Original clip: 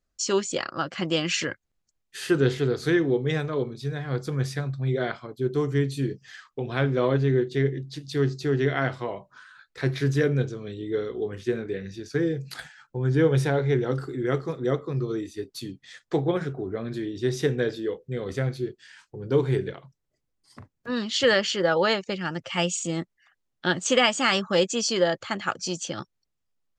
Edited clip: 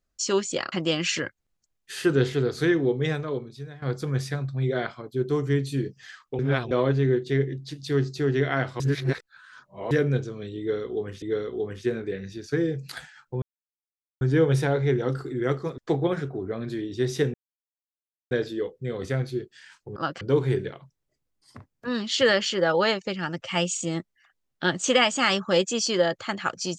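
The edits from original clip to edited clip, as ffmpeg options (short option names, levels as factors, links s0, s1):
-filter_complex "[0:a]asplit=13[s0][s1][s2][s3][s4][s5][s6][s7][s8][s9][s10][s11][s12];[s0]atrim=end=0.722[s13];[s1]atrim=start=0.968:end=4.07,asetpts=PTS-STARTPTS,afade=t=out:st=2.362:d=0.74:silence=0.199526[s14];[s2]atrim=start=4.07:end=6.642,asetpts=PTS-STARTPTS,afade=t=in:d=0.004:c=hsin:silence=0.199526[s15];[s3]atrim=start=6.638:end=6.962,asetpts=PTS-STARTPTS,areverse[s16];[s4]atrim=start=6.958:end=9.052[s17];[s5]atrim=start=9.048:end=10.162,asetpts=PTS-STARTPTS,areverse[s18];[s6]atrim=start=10.158:end=11.472[s19];[s7]atrim=start=10.838:end=13.04,asetpts=PTS-STARTPTS,afade=t=out:st=2.198:d=0.004:c=hsin,apad=pad_dur=0.79[s20];[s8]atrim=start=13.04:end=14.612,asetpts=PTS-STARTPTS,afade=t=in:d=0.004:c=hsin[s21];[s9]atrim=start=16.018:end=17.58,asetpts=PTS-STARTPTS,afade=t=out:st=1.558:d=0.004:c=hsin,apad=pad_dur=0.97[s22];[s10]atrim=start=17.58:end=19.232,asetpts=PTS-STARTPTS,afade=t=in:d=0.004:c=hsin[s23];[s11]atrim=start=0.718:end=0.972[s24];[s12]atrim=start=19.228[s25];[s14][s15]concat=n=2:v=0:a=1[s26];[s13][s26]acrossfade=d=0.004:c1=hsin:c2=hsin[s27];[s27][s16]acrossfade=d=0.004:c1=hsin:c2=hsin[s28];[s28][s17]acrossfade=d=0.004:c1=hsin:c2=hsin[s29];[s29][s18]acrossfade=d=0.004:c1=hsin:c2=hsin[s30];[s30][s19]acrossfade=d=0.004:c1=hsin:c2=hsin[s31];[s20][s21]concat=n=2:v=0:a=1[s32];[s31][s32]acrossfade=d=0.004:c1=hsin:c2=hsin[s33];[s22][s23]concat=n=2:v=0:a=1[s34];[s33][s34]acrossfade=d=0.004:c1=hsin:c2=hsin[s35];[s35][s24]acrossfade=d=0.004:c1=hsin:c2=hsin[s36];[s36][s25]acrossfade=d=0.004:c1=hsin:c2=hsin"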